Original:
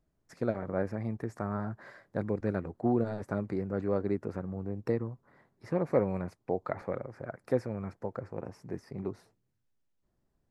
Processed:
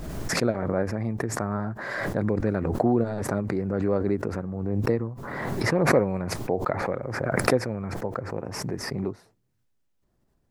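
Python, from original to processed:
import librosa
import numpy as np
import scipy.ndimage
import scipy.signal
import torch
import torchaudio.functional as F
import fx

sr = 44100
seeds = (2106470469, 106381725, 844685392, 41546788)

y = fx.pre_swell(x, sr, db_per_s=30.0)
y = F.gain(torch.from_numpy(y), 5.0).numpy()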